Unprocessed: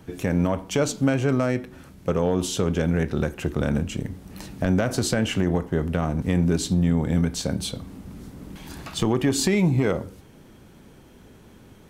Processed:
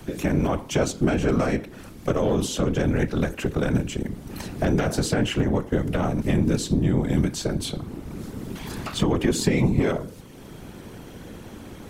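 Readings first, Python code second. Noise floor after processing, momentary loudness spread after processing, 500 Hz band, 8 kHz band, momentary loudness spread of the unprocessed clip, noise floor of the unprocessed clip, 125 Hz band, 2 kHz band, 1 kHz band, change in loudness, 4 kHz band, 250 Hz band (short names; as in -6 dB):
-42 dBFS, 19 LU, +0.5 dB, -1.5 dB, 17 LU, -50 dBFS, -0.5 dB, 0.0 dB, +1.5 dB, -0.5 dB, -0.5 dB, 0.0 dB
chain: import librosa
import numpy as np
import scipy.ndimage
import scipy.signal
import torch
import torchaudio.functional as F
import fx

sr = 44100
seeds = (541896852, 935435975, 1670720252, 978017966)

y = fx.whisperise(x, sr, seeds[0])
y = fx.band_squash(y, sr, depth_pct=40)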